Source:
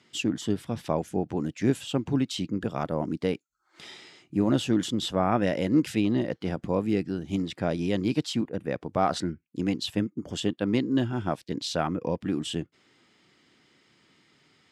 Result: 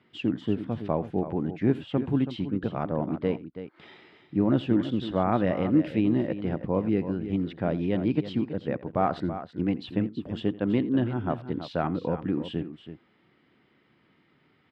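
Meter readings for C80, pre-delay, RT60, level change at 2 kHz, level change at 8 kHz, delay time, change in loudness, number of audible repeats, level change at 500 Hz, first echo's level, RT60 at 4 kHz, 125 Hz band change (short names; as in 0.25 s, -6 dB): none, none, none, -3.0 dB, under -25 dB, 84 ms, +0.5 dB, 2, 0.0 dB, -19.5 dB, none, +1.0 dB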